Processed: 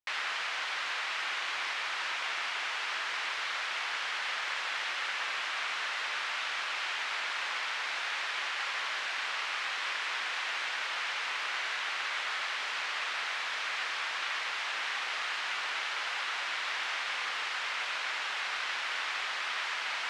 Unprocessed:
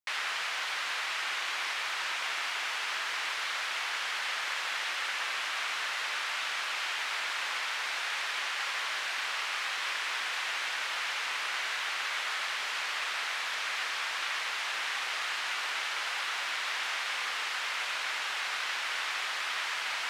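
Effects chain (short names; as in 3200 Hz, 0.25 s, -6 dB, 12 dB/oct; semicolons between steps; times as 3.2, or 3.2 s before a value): air absorption 61 m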